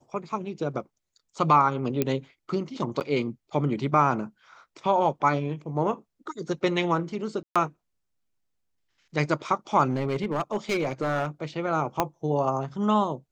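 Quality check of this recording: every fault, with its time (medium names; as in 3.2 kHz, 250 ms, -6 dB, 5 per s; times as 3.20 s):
2.02 s: pop -10 dBFS
3.00–3.01 s: dropout 8.6 ms
7.43–7.56 s: dropout 126 ms
9.89–11.27 s: clipped -21.5 dBFS
12.00 s: pop -8 dBFS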